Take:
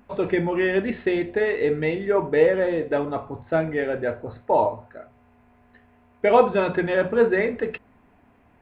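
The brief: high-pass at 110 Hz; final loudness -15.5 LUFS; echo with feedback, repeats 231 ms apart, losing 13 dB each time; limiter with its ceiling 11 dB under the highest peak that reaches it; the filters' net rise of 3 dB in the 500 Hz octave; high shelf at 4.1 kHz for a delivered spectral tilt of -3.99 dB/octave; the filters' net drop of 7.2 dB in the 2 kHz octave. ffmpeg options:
-af "highpass=110,equalizer=f=500:t=o:g=4,equalizer=f=2000:t=o:g=-7.5,highshelf=f=4100:g=-6.5,alimiter=limit=0.251:level=0:latency=1,aecho=1:1:231|462|693:0.224|0.0493|0.0108,volume=2.24"

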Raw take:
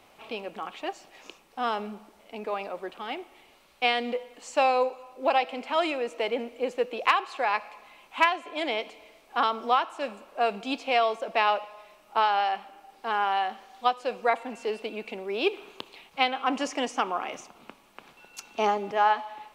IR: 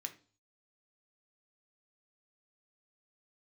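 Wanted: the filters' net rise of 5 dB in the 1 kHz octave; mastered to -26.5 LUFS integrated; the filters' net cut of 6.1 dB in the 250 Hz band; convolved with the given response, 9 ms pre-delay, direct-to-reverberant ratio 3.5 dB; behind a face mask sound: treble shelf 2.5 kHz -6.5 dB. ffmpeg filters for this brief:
-filter_complex "[0:a]equalizer=f=250:t=o:g=-8,equalizer=f=1000:t=o:g=8,asplit=2[s0][s1];[1:a]atrim=start_sample=2205,adelay=9[s2];[s1][s2]afir=irnorm=-1:irlink=0,volume=0.891[s3];[s0][s3]amix=inputs=2:normalize=0,highshelf=f=2500:g=-6.5,volume=0.75"

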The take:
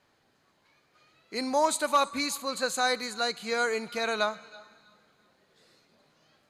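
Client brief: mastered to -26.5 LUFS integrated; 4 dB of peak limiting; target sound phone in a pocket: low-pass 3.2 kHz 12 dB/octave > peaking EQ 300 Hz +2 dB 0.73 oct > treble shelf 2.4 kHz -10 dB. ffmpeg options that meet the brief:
-af "alimiter=limit=0.126:level=0:latency=1,lowpass=3200,equalizer=f=300:t=o:w=0.73:g=2,highshelf=f=2400:g=-10,volume=1.88"

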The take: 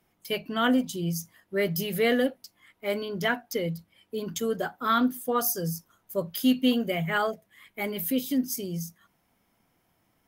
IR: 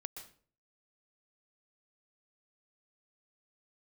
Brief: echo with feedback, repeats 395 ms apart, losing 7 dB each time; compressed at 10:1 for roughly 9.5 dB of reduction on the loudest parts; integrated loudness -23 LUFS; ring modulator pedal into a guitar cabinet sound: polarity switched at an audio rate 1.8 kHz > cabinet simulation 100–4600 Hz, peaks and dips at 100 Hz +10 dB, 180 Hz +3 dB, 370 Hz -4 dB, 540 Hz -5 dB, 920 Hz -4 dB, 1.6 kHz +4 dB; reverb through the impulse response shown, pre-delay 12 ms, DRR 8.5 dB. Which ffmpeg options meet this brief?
-filter_complex "[0:a]acompressor=threshold=0.0398:ratio=10,aecho=1:1:395|790|1185|1580|1975:0.447|0.201|0.0905|0.0407|0.0183,asplit=2[s0][s1];[1:a]atrim=start_sample=2205,adelay=12[s2];[s1][s2]afir=irnorm=-1:irlink=0,volume=0.531[s3];[s0][s3]amix=inputs=2:normalize=0,aeval=exprs='val(0)*sgn(sin(2*PI*1800*n/s))':c=same,highpass=100,equalizer=f=100:t=q:w=4:g=10,equalizer=f=180:t=q:w=4:g=3,equalizer=f=370:t=q:w=4:g=-4,equalizer=f=540:t=q:w=4:g=-5,equalizer=f=920:t=q:w=4:g=-4,equalizer=f=1600:t=q:w=4:g=4,lowpass=f=4600:w=0.5412,lowpass=f=4600:w=1.3066,volume=2.11"

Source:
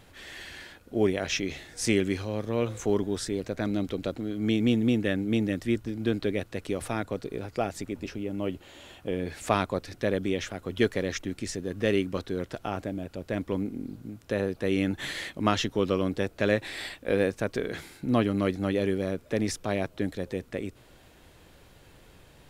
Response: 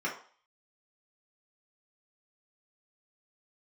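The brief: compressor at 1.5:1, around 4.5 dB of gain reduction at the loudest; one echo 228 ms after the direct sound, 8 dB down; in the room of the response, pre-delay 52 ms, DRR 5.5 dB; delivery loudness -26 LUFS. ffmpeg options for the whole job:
-filter_complex "[0:a]acompressor=threshold=0.0282:ratio=1.5,aecho=1:1:228:0.398,asplit=2[s0][s1];[1:a]atrim=start_sample=2205,adelay=52[s2];[s1][s2]afir=irnorm=-1:irlink=0,volume=0.237[s3];[s0][s3]amix=inputs=2:normalize=0,volume=1.78"

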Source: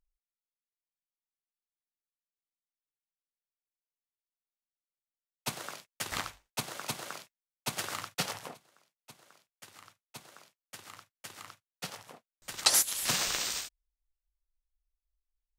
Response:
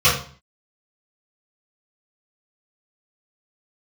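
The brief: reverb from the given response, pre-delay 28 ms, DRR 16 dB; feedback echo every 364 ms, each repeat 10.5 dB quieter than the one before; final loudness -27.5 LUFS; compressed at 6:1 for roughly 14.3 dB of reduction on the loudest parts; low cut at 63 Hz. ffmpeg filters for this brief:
-filter_complex "[0:a]highpass=63,acompressor=threshold=0.0158:ratio=6,aecho=1:1:364|728|1092:0.299|0.0896|0.0269,asplit=2[s0][s1];[1:a]atrim=start_sample=2205,adelay=28[s2];[s1][s2]afir=irnorm=-1:irlink=0,volume=0.0126[s3];[s0][s3]amix=inputs=2:normalize=0,volume=5.31"

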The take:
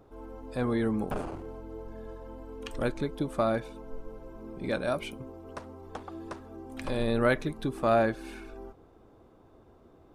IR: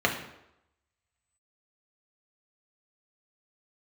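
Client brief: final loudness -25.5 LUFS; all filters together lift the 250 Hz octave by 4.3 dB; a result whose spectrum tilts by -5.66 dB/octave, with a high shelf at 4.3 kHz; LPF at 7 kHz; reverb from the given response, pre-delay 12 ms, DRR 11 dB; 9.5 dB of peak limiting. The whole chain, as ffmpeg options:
-filter_complex "[0:a]lowpass=7000,equalizer=f=250:t=o:g=5,highshelf=f=4300:g=5.5,alimiter=limit=0.0891:level=0:latency=1,asplit=2[s0][s1];[1:a]atrim=start_sample=2205,adelay=12[s2];[s1][s2]afir=irnorm=-1:irlink=0,volume=0.0562[s3];[s0][s3]amix=inputs=2:normalize=0,volume=2.66"

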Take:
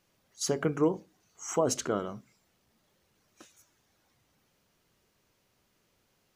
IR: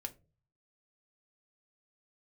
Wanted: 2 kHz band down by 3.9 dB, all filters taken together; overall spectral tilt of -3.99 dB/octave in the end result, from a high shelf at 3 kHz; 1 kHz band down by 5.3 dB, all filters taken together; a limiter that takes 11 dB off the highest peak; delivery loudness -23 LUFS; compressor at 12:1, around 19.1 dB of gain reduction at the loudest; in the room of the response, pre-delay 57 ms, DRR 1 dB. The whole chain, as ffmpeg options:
-filter_complex "[0:a]equalizer=f=1000:t=o:g=-6.5,equalizer=f=2000:t=o:g=-4.5,highshelf=f=3000:g=6.5,acompressor=threshold=0.00794:ratio=12,alimiter=level_in=6.68:limit=0.0631:level=0:latency=1,volume=0.15,asplit=2[s0][s1];[1:a]atrim=start_sample=2205,adelay=57[s2];[s1][s2]afir=irnorm=-1:irlink=0,volume=1.19[s3];[s0][s3]amix=inputs=2:normalize=0,volume=21.1"

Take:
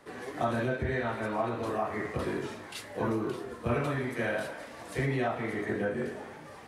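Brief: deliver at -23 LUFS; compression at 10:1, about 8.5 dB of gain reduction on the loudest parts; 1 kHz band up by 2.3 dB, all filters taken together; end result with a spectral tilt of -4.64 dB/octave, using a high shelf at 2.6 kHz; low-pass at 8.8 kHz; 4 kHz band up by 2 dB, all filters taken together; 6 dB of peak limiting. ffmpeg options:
-af "lowpass=8800,equalizer=f=1000:t=o:g=4,highshelf=f=2600:g=-7.5,equalizer=f=4000:t=o:g=8.5,acompressor=threshold=0.0251:ratio=10,volume=6.31,alimiter=limit=0.224:level=0:latency=1"

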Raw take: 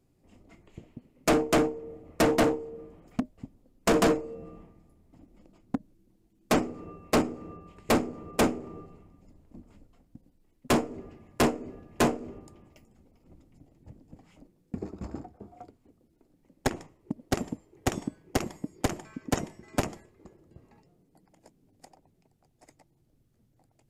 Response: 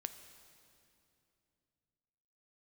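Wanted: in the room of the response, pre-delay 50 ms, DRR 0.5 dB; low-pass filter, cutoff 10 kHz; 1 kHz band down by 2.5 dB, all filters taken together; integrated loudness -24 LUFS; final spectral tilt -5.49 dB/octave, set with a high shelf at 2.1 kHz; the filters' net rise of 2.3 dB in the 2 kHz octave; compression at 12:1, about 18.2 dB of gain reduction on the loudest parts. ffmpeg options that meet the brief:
-filter_complex "[0:a]lowpass=10000,equalizer=f=1000:t=o:g=-4,equalizer=f=2000:t=o:g=7,highshelf=f=2100:g=-5,acompressor=threshold=0.0112:ratio=12,asplit=2[s0][s1];[1:a]atrim=start_sample=2205,adelay=50[s2];[s1][s2]afir=irnorm=-1:irlink=0,volume=1.26[s3];[s0][s3]amix=inputs=2:normalize=0,volume=10.6"

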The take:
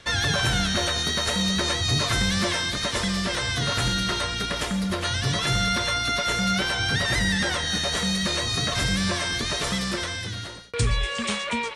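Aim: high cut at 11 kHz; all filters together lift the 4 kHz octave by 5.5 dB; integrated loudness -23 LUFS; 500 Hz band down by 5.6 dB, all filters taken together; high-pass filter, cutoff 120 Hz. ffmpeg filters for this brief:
-af "highpass=120,lowpass=11000,equalizer=f=500:t=o:g=-7.5,equalizer=f=4000:t=o:g=6.5,volume=0.794"

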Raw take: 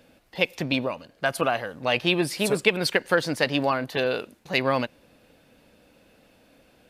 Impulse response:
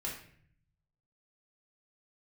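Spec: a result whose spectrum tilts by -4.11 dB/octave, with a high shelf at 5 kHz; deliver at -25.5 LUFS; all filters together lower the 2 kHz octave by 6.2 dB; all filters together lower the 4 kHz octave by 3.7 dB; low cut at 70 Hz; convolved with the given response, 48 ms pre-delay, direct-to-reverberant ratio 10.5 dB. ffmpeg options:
-filter_complex "[0:a]highpass=70,equalizer=f=2000:t=o:g=-8.5,equalizer=f=4000:t=o:g=-5,highshelf=f=5000:g=8,asplit=2[s0][s1];[1:a]atrim=start_sample=2205,adelay=48[s2];[s1][s2]afir=irnorm=-1:irlink=0,volume=0.251[s3];[s0][s3]amix=inputs=2:normalize=0,volume=1.12"

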